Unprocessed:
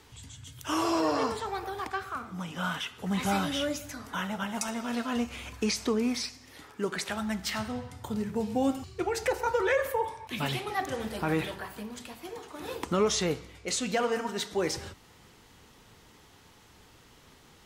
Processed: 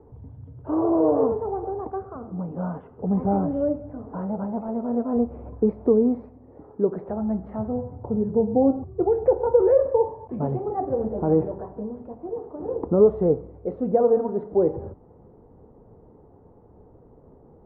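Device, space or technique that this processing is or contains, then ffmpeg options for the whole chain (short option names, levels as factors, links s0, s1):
under water: -af "lowpass=f=760:w=0.5412,lowpass=f=760:w=1.3066,equalizer=f=460:t=o:w=0.55:g=5,volume=2.24"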